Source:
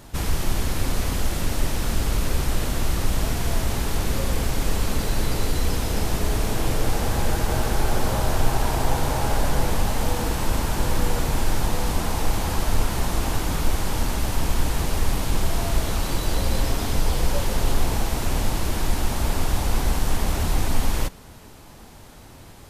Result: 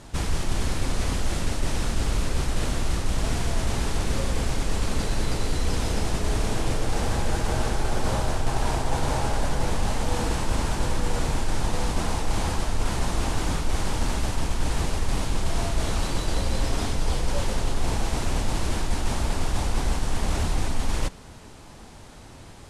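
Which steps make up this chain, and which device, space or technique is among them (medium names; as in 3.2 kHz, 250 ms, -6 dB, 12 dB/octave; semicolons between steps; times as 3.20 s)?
low-pass 10 kHz 24 dB/octave; compression on the reversed sound (reverse; compression, threshold -18 dBFS, peak gain reduction 7 dB; reverse)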